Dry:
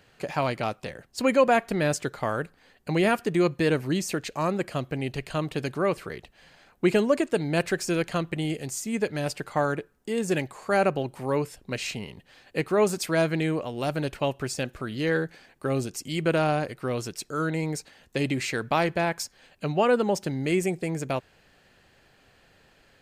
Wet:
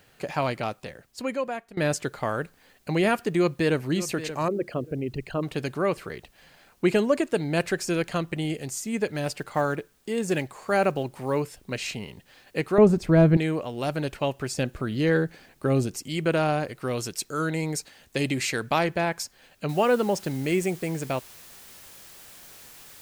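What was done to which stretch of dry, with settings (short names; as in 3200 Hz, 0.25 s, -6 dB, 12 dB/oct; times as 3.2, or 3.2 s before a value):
0.49–1.77 fade out, to -20.5 dB
3.33–3.87 echo throw 0.58 s, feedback 25%, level -13 dB
4.48–5.43 formant sharpening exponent 2
9.15–11.44 block floating point 7-bit
12.78–13.37 tilt -4.5 dB/oct
14.56–16 low shelf 440 Hz +6 dB
16.81–18.79 high shelf 3900 Hz +6.5 dB
19.69 noise floor step -67 dB -48 dB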